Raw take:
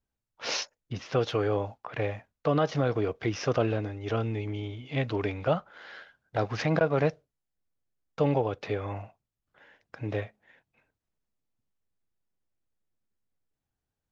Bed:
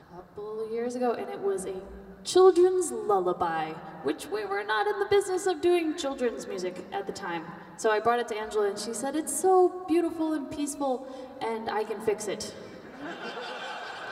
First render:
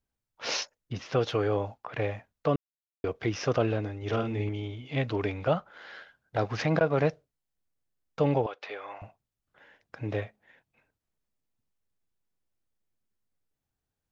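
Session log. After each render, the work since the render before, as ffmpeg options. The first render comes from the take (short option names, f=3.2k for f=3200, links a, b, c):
-filter_complex "[0:a]asettb=1/sr,asplit=3[a][b][c];[a]atrim=end=3.974[d];[b]atrim=start=3.97:end=4.49,asetpts=PTS-STARTPTS,afade=t=in:d=0.004:c=qsin,afade=t=out:st=0.516:d=0.004:c=qsin,asplit=2[e][f];[f]adelay=48,volume=-5dB[g];[e][g]amix=inputs=2:normalize=0,atrim=end_sample=22932[h];[c]atrim=start=4.486[i];[d][h]acrossfade=d=0.004:c1=hsin:c2=qsin[j];[j][i]acrossfade=d=0.004:c1=qsin:c2=hsin,asettb=1/sr,asplit=3[k][l][m];[k]atrim=end=8.464[n];[l]atrim=start=8.46:end=9.02,asetpts=PTS-STARTPTS,afade=t=in:d=0.004:c=qsin,afade=t=out:st=0.556:d=0.004:c=qsin,highpass=730,lowpass=5k[o];[m]atrim=start=9.016[p];[n][o]acrossfade=d=0.004:c1=hsin:c2=qsin[q];[q][p]acrossfade=d=0.004:c1=qsin:c2=hsin,asplit=3[r][s][t];[r]atrim=end=2.56,asetpts=PTS-STARTPTS,afade=t=out:st=2.556:d=0.004:c=hsin[u];[s]atrim=start=2.56:end=3.04,asetpts=PTS-STARTPTS,volume=0[v];[t]atrim=start=3.04,asetpts=PTS-STARTPTS,afade=t=in:d=0.004:c=hsin[w];[u][v][w]concat=n=3:v=0:a=1"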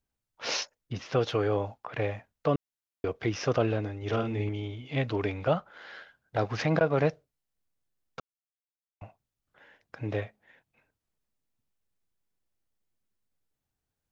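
-filter_complex "[0:a]asplit=3[a][b][c];[a]atrim=end=8.2,asetpts=PTS-STARTPTS,afade=t=out:st=8.196:d=0.004:c=hsin[d];[b]atrim=start=8.2:end=9.01,asetpts=PTS-STARTPTS,volume=0[e];[c]atrim=start=9.01,asetpts=PTS-STARTPTS,afade=t=in:d=0.004:c=hsin[f];[d][e][f]concat=n=3:v=0:a=1"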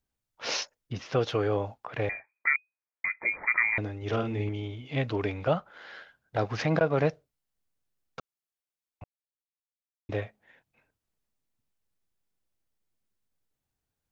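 -filter_complex "[0:a]asettb=1/sr,asplit=3[a][b][c];[a]atrim=end=2.094[d];[b]atrim=start=2.09:end=3.78,asetpts=PTS-STARTPTS,afade=t=in:d=0.004:c=qsin,afade=t=out:st=1.686:d=0.004:c=qsin,lowpass=f=2.1k:t=q:w=0.5098,lowpass=f=2.1k:t=q:w=0.6013,lowpass=f=2.1k:t=q:w=0.9,lowpass=f=2.1k:t=q:w=2.563,afreqshift=-2500[e];[c]atrim=start=3.776[f];[d][e]acrossfade=d=0.004:c1=hsin:c2=qsin[g];[g][f]acrossfade=d=0.004:c1=qsin:c2=hsin,asplit=3[h][i][j];[h]atrim=end=9.04,asetpts=PTS-STARTPTS,afade=t=out:st=9.036:d=0.004:c=hsin[k];[i]atrim=start=9.04:end=10.09,asetpts=PTS-STARTPTS,volume=0[l];[j]atrim=start=10.09,asetpts=PTS-STARTPTS,afade=t=in:d=0.004:c=hsin[m];[k][l][m]concat=n=3:v=0:a=1"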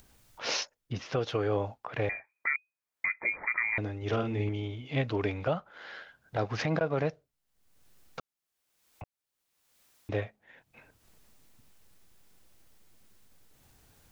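-af "alimiter=limit=-18.5dB:level=0:latency=1:release=300,acompressor=mode=upward:threshold=-41dB:ratio=2.5"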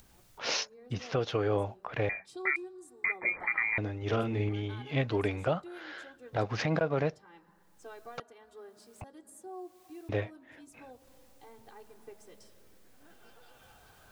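-filter_complex "[1:a]volume=-23dB[a];[0:a][a]amix=inputs=2:normalize=0"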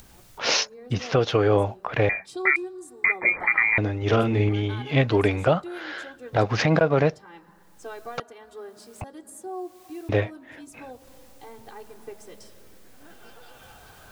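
-af "volume=9.5dB"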